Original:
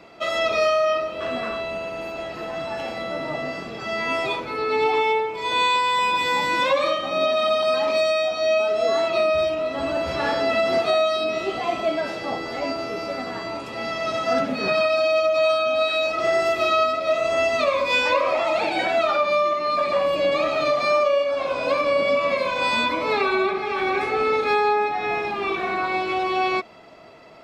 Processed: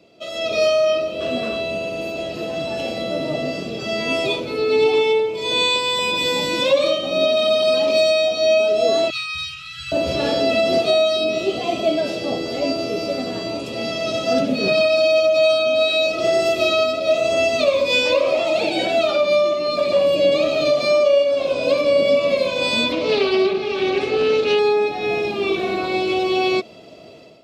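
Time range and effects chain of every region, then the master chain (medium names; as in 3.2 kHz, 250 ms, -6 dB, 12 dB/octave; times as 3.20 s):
9.10–9.92 s: brick-wall FIR band-stop 160–1200 Hz + bass shelf 380 Hz -7 dB
22.92–24.59 s: Chebyshev low-pass 5.7 kHz + loudspeaker Doppler distortion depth 0.13 ms
whole clip: high-pass 69 Hz; high-order bell 1.3 kHz -13 dB; level rider gain up to 11 dB; trim -3.5 dB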